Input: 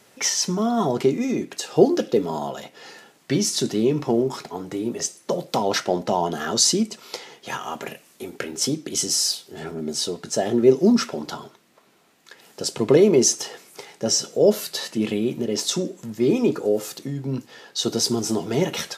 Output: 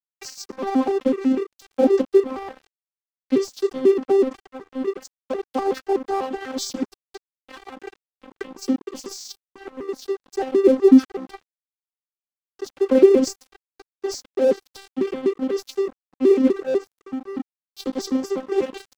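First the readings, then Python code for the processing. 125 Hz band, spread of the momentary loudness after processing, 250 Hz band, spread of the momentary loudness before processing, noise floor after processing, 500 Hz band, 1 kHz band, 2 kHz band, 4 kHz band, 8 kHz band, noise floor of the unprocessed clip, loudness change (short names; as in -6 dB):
under -15 dB, 21 LU, +1.5 dB, 15 LU, under -85 dBFS, +2.0 dB, -2.0 dB, -5.0 dB, -12.5 dB, -15.5 dB, -57 dBFS, +1.0 dB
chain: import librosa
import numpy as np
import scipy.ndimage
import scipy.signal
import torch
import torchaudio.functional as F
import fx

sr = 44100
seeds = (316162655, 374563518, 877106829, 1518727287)

y = fx.vocoder_arp(x, sr, chord='bare fifth', root=60, every_ms=124)
y = np.sign(y) * np.maximum(np.abs(y) - 10.0 ** (-35.0 / 20.0), 0.0)
y = y * 10.0 ** (2.5 / 20.0)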